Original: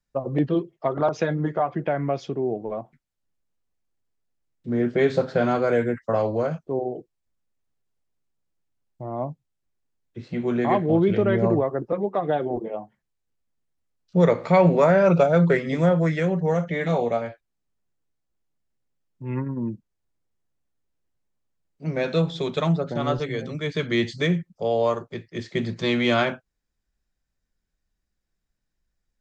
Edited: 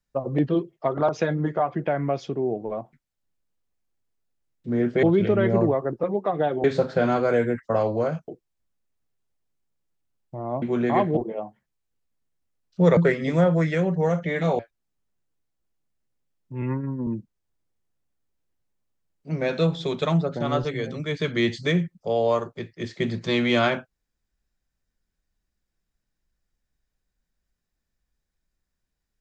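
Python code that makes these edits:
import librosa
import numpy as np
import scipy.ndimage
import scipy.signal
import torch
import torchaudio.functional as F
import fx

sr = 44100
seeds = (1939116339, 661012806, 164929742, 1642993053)

y = fx.edit(x, sr, fx.cut(start_s=6.67, length_s=0.28),
    fx.cut(start_s=9.29, length_s=1.08),
    fx.move(start_s=10.92, length_s=1.61, to_s=5.03),
    fx.cut(start_s=14.33, length_s=1.09),
    fx.cut(start_s=17.04, length_s=0.25),
    fx.stretch_span(start_s=19.32, length_s=0.3, factor=1.5), tone=tone)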